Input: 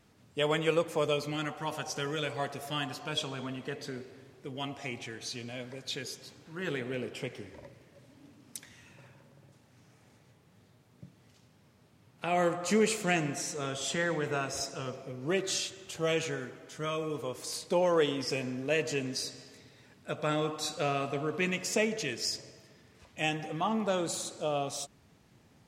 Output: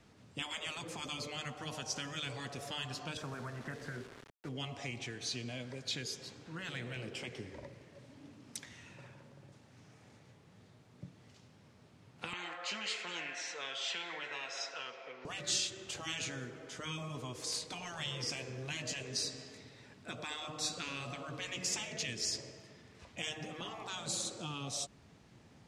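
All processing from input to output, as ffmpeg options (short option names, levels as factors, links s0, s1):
-filter_complex "[0:a]asettb=1/sr,asplit=3[s0][s1][s2];[s0]atrim=end=3.174[s3];[s1]atrim=start=3.17:end=4.49,asetpts=PTS-STARTPTS,afade=t=in:d=0.004:c=qsin,afade=t=out:st=1.316:d=0.004:c=qsin,highshelf=f=2300:t=q:w=3:g=-11.5,aeval=exprs='val(0)*gte(abs(val(0)),0.00398)':c=same[s4];[s2]atrim=start=4.486[s5];[s3][s4]acrossfade=d=0.004:c1=hsin:c2=qsin[s6];[s6][s5]acrossfade=d=0.004:c1=qsin:c2=hsin,asettb=1/sr,asplit=3[s7][s8][s9];[s7]atrim=end=12.334[s10];[s8]atrim=start=12.33:end=15.25,asetpts=PTS-STARTPTS,afade=t=in:d=0.004:c=qsin,afade=t=out:st=2.916:d=0.004:c=qsin,highpass=720,lowpass=3600,equalizer=f=2100:w=0.61:g=8,bandreject=f=1200:w=11[s11];[s9]atrim=start=15.246[s12];[s10][s11]acrossfade=d=0.004:c1=hsin:c2=qsin[s13];[s13][s12]acrossfade=d=0.004:c1=qsin:c2=hsin,lowpass=8200,afftfilt=real='re*lt(hypot(re,im),0.0891)':imag='im*lt(hypot(re,im),0.0891)':win_size=1024:overlap=0.75,acrossover=split=210|3000[s14][s15][s16];[s15]acompressor=threshold=0.00501:ratio=4[s17];[s14][s17][s16]amix=inputs=3:normalize=0,volume=1.19"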